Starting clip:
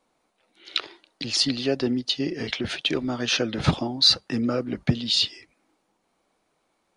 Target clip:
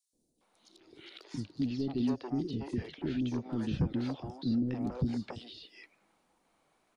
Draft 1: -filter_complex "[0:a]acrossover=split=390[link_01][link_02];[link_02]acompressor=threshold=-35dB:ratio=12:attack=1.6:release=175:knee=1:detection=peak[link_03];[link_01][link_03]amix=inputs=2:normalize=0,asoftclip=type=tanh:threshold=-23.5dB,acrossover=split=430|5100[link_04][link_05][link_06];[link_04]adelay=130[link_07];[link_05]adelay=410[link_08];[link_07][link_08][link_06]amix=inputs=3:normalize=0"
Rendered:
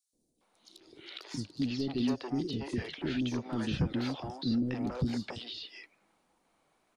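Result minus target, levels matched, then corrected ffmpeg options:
downward compressor: peak gain reduction −8 dB
-filter_complex "[0:a]acrossover=split=390[link_01][link_02];[link_02]acompressor=threshold=-43.5dB:ratio=12:attack=1.6:release=175:knee=1:detection=peak[link_03];[link_01][link_03]amix=inputs=2:normalize=0,asoftclip=type=tanh:threshold=-23.5dB,acrossover=split=430|5100[link_04][link_05][link_06];[link_04]adelay=130[link_07];[link_05]adelay=410[link_08];[link_07][link_08][link_06]amix=inputs=3:normalize=0"

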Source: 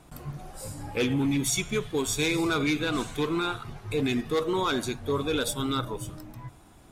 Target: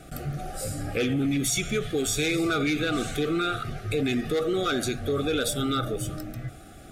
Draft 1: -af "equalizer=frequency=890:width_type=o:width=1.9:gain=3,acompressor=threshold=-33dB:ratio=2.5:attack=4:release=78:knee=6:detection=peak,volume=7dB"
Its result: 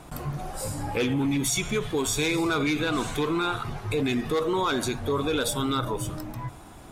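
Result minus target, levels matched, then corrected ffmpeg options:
1,000 Hz band +3.0 dB
-af "asuperstop=centerf=960:order=20:qfactor=2.8,equalizer=frequency=890:width_type=o:width=1.9:gain=3,acompressor=threshold=-33dB:ratio=2.5:attack=4:release=78:knee=6:detection=peak,volume=7dB"

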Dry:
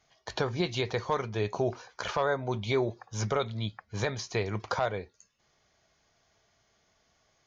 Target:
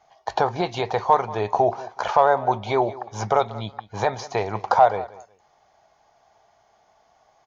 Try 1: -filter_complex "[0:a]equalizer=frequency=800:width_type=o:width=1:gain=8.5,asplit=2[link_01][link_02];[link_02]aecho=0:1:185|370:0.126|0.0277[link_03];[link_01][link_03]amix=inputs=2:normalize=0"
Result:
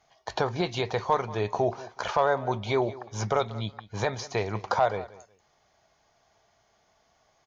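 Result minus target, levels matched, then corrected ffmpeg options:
1,000 Hz band −2.5 dB
-filter_complex "[0:a]equalizer=frequency=800:width_type=o:width=1:gain=19.5,asplit=2[link_01][link_02];[link_02]aecho=0:1:185|370:0.126|0.0277[link_03];[link_01][link_03]amix=inputs=2:normalize=0"

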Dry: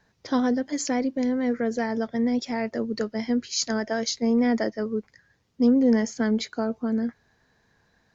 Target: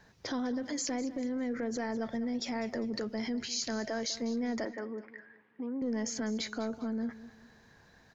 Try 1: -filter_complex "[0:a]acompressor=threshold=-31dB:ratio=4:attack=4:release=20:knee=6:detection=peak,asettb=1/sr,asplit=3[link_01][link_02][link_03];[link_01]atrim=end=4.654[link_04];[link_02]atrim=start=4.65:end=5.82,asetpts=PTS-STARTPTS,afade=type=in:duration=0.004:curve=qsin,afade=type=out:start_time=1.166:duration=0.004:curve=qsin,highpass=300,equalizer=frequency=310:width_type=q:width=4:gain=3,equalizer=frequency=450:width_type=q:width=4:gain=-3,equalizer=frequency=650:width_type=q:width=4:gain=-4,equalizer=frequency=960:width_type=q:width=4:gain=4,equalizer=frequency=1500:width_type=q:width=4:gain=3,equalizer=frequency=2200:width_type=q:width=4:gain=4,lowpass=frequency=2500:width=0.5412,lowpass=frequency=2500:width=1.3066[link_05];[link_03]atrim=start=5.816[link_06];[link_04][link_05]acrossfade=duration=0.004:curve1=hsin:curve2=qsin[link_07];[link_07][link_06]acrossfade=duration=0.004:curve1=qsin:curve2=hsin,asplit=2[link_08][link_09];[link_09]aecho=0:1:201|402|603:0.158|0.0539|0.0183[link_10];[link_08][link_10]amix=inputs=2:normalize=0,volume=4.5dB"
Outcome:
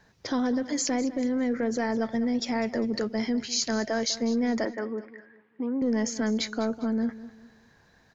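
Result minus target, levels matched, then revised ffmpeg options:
downward compressor: peak gain reduction −7.5 dB
-filter_complex "[0:a]acompressor=threshold=-41dB:ratio=4:attack=4:release=20:knee=6:detection=peak,asettb=1/sr,asplit=3[link_01][link_02][link_03];[link_01]atrim=end=4.654[link_04];[link_02]atrim=start=4.65:end=5.82,asetpts=PTS-STARTPTS,afade=type=in:duration=0.004:curve=qsin,afade=type=out:start_time=1.166:duration=0.004:curve=qsin,highpass=300,equalizer=frequency=310:width_type=q:width=4:gain=3,equalizer=frequency=450:width_type=q:width=4:gain=-3,equalizer=frequency=650:width_type=q:width=4:gain=-4,equalizer=frequency=960:width_type=q:width=4:gain=4,equalizer=frequency=1500:width_type=q:width=4:gain=3,equalizer=frequency=2200:width_type=q:width=4:gain=4,lowpass=frequency=2500:width=0.5412,lowpass=frequency=2500:width=1.3066[link_05];[link_03]atrim=start=5.816[link_06];[link_04][link_05]acrossfade=duration=0.004:curve1=hsin:curve2=qsin[link_07];[link_07][link_06]acrossfade=duration=0.004:curve1=qsin:curve2=hsin,asplit=2[link_08][link_09];[link_09]aecho=0:1:201|402|603:0.158|0.0539|0.0183[link_10];[link_08][link_10]amix=inputs=2:normalize=0,volume=4.5dB"

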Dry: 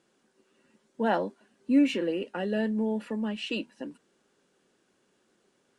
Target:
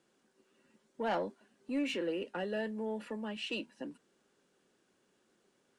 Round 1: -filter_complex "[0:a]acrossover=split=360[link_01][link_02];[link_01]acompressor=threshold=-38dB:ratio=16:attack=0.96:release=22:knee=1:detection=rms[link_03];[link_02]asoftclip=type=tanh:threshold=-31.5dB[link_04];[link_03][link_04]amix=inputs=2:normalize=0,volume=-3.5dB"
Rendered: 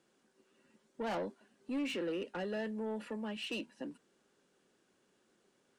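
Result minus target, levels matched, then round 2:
soft clipping: distortion +7 dB
-filter_complex "[0:a]acrossover=split=360[link_01][link_02];[link_01]acompressor=threshold=-38dB:ratio=16:attack=0.96:release=22:knee=1:detection=rms[link_03];[link_02]asoftclip=type=tanh:threshold=-23.5dB[link_04];[link_03][link_04]amix=inputs=2:normalize=0,volume=-3.5dB"

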